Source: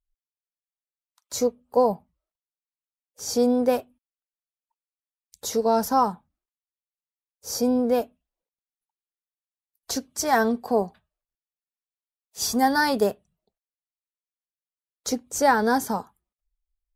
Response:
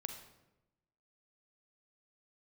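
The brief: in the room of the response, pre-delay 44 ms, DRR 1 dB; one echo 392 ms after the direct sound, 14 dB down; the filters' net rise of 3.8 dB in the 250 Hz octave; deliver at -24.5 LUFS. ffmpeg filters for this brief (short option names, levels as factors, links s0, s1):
-filter_complex "[0:a]equalizer=f=250:t=o:g=4,aecho=1:1:392:0.2,asplit=2[s0][s1];[1:a]atrim=start_sample=2205,adelay=44[s2];[s1][s2]afir=irnorm=-1:irlink=0,volume=1.12[s3];[s0][s3]amix=inputs=2:normalize=0,volume=0.596"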